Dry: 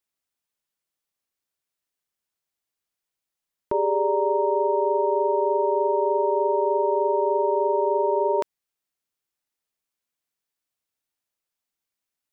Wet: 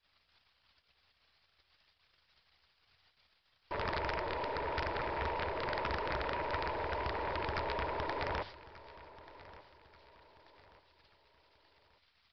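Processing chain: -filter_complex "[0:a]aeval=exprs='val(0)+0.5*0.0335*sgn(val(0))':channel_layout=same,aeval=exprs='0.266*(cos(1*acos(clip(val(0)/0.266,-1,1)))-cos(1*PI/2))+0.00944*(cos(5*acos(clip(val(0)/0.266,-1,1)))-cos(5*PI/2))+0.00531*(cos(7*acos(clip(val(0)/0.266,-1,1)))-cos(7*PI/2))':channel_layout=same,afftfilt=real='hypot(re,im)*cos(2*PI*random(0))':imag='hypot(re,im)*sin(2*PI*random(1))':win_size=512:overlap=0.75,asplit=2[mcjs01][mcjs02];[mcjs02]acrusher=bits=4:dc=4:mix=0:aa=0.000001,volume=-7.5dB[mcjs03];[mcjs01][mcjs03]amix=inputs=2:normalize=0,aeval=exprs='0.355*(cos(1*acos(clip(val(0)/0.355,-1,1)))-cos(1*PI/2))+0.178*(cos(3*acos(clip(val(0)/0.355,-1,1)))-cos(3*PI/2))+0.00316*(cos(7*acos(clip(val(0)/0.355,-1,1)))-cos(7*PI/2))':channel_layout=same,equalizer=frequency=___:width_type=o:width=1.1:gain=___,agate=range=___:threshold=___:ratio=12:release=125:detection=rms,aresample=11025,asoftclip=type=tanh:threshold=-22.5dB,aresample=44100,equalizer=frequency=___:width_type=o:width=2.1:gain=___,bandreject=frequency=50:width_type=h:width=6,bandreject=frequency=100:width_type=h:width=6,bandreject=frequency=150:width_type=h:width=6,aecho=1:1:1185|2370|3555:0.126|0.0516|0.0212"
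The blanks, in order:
72, 9.5, -30dB, -41dB, 290, -9.5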